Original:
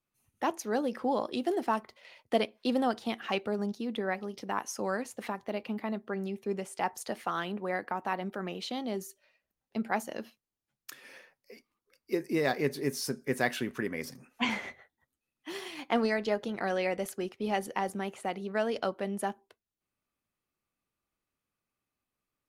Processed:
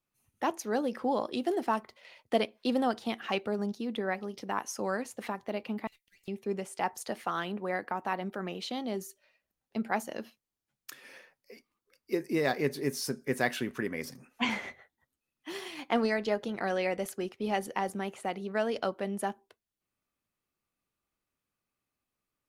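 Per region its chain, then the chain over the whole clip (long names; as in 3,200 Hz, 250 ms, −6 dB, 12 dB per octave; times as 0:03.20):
0:05.87–0:06.28: Butterworth high-pass 2,100 Hz 72 dB per octave + high-shelf EQ 7,500 Hz +9.5 dB + tube saturation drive 59 dB, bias 0.65
whole clip: no processing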